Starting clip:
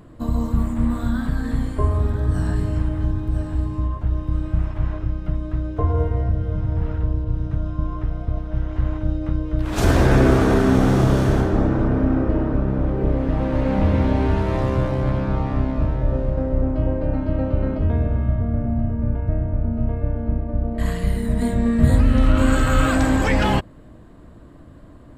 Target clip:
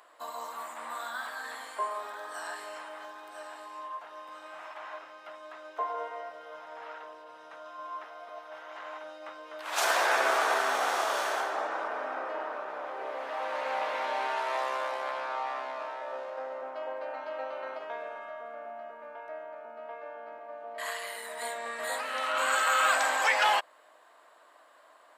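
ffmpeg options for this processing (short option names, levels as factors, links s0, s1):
-af "highpass=f=710:w=0.5412,highpass=f=710:w=1.3066"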